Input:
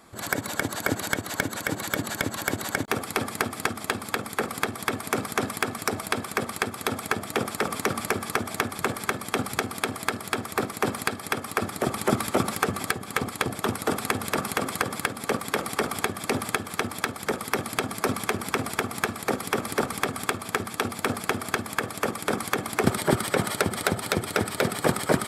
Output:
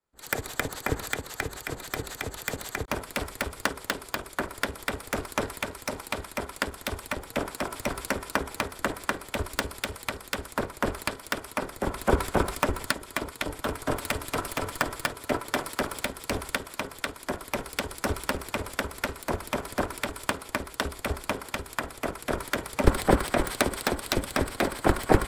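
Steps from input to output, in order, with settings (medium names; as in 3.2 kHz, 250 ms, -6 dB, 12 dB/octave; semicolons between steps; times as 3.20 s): tracing distortion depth 0.043 ms; 13.44–15.69 s: comb 6.9 ms, depth 36%; ring modulator 170 Hz; three bands expanded up and down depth 100%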